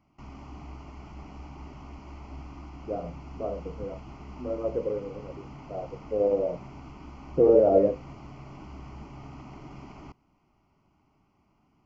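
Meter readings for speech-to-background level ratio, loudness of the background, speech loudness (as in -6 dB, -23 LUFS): 19.0 dB, -45.0 LUFS, -26.0 LUFS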